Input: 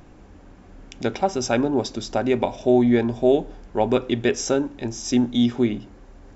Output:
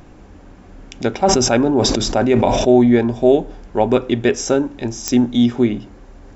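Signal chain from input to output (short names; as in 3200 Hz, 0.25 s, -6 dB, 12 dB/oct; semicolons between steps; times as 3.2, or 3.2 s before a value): dynamic EQ 4000 Hz, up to -3 dB, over -40 dBFS, Q 0.87; pops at 5.08, -8 dBFS; 1.18–2.91 sustainer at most 25 dB/s; gain +5 dB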